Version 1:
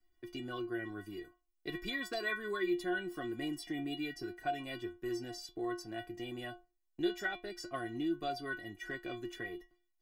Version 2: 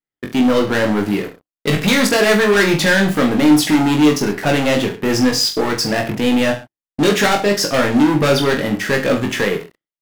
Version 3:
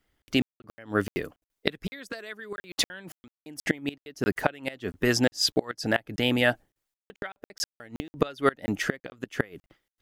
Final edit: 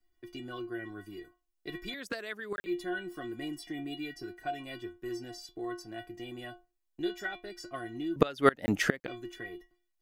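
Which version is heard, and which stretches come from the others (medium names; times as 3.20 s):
1
1.94–2.66 s: from 3
8.16–9.08 s: from 3
not used: 2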